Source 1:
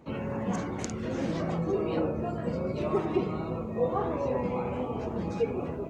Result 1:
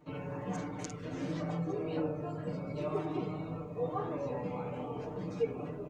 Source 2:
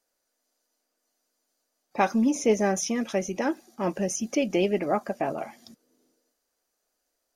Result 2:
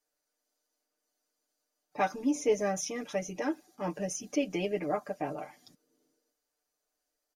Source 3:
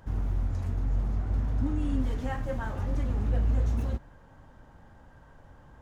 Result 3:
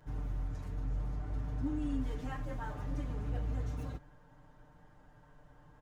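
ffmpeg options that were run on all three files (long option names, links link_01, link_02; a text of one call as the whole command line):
ffmpeg -i in.wav -af "aecho=1:1:6.7:0.99,volume=-9dB" out.wav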